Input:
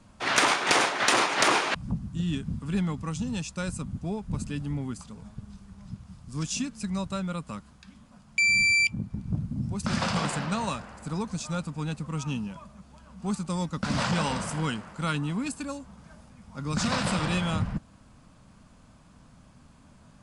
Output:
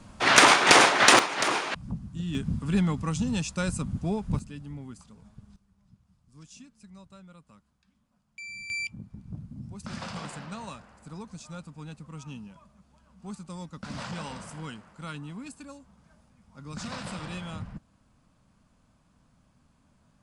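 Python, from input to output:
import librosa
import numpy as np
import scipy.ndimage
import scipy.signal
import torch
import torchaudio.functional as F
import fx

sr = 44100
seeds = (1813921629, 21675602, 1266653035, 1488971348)

y = fx.gain(x, sr, db=fx.steps((0.0, 6.0), (1.19, -4.0), (2.35, 3.0), (4.39, -8.5), (5.56, -19.0), (8.7, -10.0)))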